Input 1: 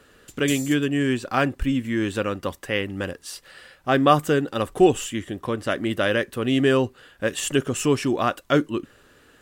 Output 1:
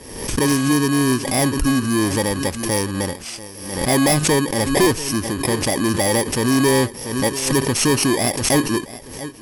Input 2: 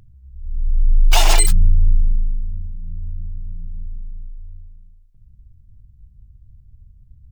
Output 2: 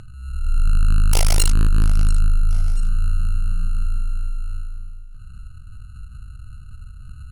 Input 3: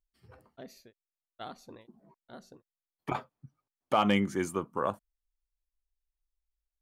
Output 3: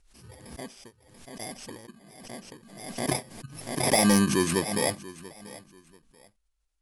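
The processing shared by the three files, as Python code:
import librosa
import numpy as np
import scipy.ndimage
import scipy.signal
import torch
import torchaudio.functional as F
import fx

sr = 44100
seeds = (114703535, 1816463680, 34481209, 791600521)

p1 = fx.bit_reversed(x, sr, seeds[0], block=32)
p2 = scipy.signal.sosfilt(scipy.signal.butter(12, 11000.0, 'lowpass', fs=sr, output='sos'), p1)
p3 = p2 + fx.echo_feedback(p2, sr, ms=687, feedback_pct=26, wet_db=-19.0, dry=0)
p4 = 10.0 ** (-18.5 / 20.0) * np.tanh(p3 / 10.0 ** (-18.5 / 20.0))
p5 = fx.pre_swell(p4, sr, db_per_s=60.0)
y = p5 * 10.0 ** (7.5 / 20.0)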